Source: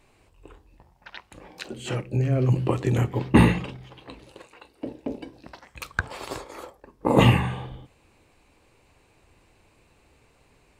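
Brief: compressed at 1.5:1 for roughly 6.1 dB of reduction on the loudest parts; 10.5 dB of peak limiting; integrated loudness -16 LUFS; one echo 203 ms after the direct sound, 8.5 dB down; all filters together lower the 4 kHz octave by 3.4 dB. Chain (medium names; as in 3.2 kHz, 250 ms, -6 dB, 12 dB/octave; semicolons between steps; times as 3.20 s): peaking EQ 4 kHz -5.5 dB; compression 1.5:1, threshold -28 dBFS; peak limiter -19 dBFS; delay 203 ms -8.5 dB; trim +15.5 dB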